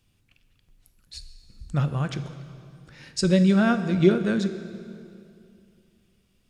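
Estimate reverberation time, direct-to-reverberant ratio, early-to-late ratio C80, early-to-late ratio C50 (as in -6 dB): 2.5 s, 9.5 dB, 11.5 dB, 10.5 dB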